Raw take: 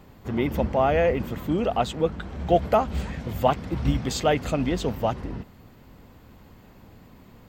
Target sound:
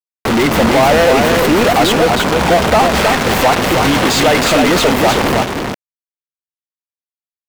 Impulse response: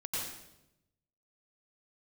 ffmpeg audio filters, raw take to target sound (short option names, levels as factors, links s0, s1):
-filter_complex "[0:a]asettb=1/sr,asplit=3[s0][s1][s2];[s0]atrim=end=2.754[s3];[s1]atrim=start=2.75:end=5,asetpts=PTS-STARTPTS,afade=t=in:d=0.004:c=qsin,afade=t=out:st=2.246:d=0.004:c=qsin,lowshelf=f=120:g=-7[s4];[s2]atrim=start=4.996[s5];[s3][s4]acrossfade=d=0.004:c1=hsin:c2=qsin[s6];[s6][s5]acrossfade=d=0.004:c1=qsin:c2=hsin,acrusher=bits=5:mix=0:aa=0.000001,asplit=2[s7][s8];[s8]highpass=f=720:p=1,volume=63.1,asoftclip=type=tanh:threshold=0.237[s9];[s7][s9]amix=inputs=2:normalize=0,lowpass=f=3900:p=1,volume=0.501,aecho=1:1:316:0.596,volume=2.24"